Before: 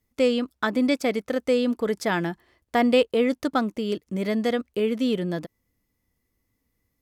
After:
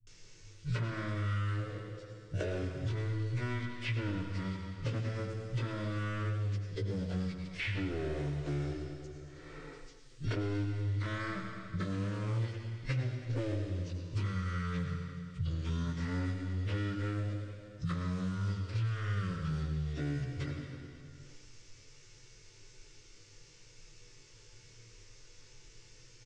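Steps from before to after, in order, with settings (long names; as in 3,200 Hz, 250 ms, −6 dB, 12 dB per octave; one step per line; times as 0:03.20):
parametric band 180 Hz −5.5 dB 2.1 octaves
leveller curve on the samples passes 3
downward compressor 3 to 1, threshold −32 dBFS, peak gain reduction 13.5 dB
phaser with its sweep stopped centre 510 Hz, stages 6
phase-vocoder stretch with locked phases 1.6×
soft clipping −25.5 dBFS, distortion −21 dB
multiband delay without the direct sound lows, highs 30 ms, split 350 Hz
four-comb reverb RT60 0.46 s, combs from 30 ms, DRR 5 dB
wrong playback speed 78 rpm record played at 33 rpm
multiband upward and downward compressor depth 100%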